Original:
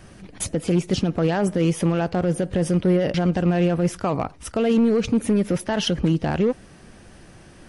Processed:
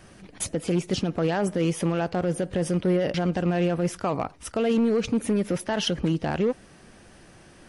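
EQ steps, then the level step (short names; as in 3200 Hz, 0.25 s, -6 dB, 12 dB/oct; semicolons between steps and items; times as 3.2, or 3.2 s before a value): low shelf 200 Hz -5.5 dB; -2.0 dB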